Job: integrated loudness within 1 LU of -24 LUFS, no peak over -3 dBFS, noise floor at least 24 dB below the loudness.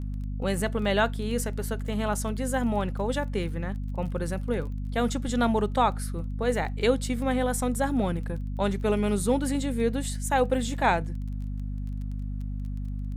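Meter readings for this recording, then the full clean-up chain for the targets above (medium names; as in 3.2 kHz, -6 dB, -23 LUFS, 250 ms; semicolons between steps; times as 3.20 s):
tick rate 21 per s; hum 50 Hz; highest harmonic 250 Hz; hum level -29 dBFS; loudness -28.0 LUFS; peak level -9.5 dBFS; loudness target -24.0 LUFS
-> de-click; de-hum 50 Hz, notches 5; trim +4 dB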